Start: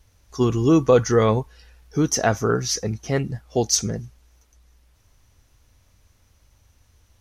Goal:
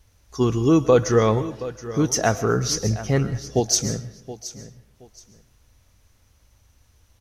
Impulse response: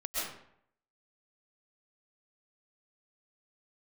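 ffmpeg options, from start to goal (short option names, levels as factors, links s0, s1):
-filter_complex "[0:a]asettb=1/sr,asplit=3[s0][s1][s2];[s0]atrim=end=2.564[s3];[s1]atrim=start=2.56:end=3.6,asetpts=PTS-STARTPTS,afade=t=in:d=0.004:c=qsin,afade=t=out:st=1.036:d=0.004:c=qsin,lowshelf=f=170:g=7.5[s4];[s2]atrim=start=3.596[s5];[s3][s4]acrossfade=d=0.004:c1=hsin:c2=qsin[s6];[s6][s5]acrossfade=d=0.004:c1=qsin:c2=hsin,aecho=1:1:723|1446:0.178|0.0409,asplit=2[s7][s8];[1:a]atrim=start_sample=2205,highshelf=f=4100:g=9.5[s9];[s8][s9]afir=irnorm=-1:irlink=0,volume=0.0944[s10];[s7][s10]amix=inputs=2:normalize=0,volume=0.891"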